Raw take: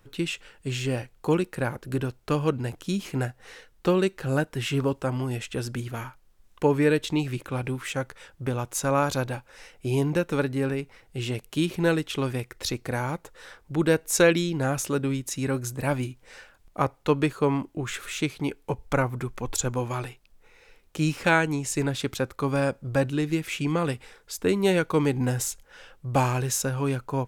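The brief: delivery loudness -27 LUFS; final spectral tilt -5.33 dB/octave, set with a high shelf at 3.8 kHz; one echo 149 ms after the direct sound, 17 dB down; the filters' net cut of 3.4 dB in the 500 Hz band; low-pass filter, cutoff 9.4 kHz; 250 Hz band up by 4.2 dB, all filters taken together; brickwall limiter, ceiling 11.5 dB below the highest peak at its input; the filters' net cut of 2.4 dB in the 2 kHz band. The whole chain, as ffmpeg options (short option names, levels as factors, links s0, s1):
-af "lowpass=9400,equalizer=f=250:t=o:g=8,equalizer=f=500:t=o:g=-7,equalizer=f=2000:t=o:g=-4,highshelf=f=3800:g=3.5,alimiter=limit=0.106:level=0:latency=1,aecho=1:1:149:0.141,volume=1.33"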